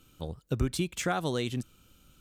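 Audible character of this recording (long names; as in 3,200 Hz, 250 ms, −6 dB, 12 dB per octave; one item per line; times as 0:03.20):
background noise floor −65 dBFS
spectral slope −5.0 dB per octave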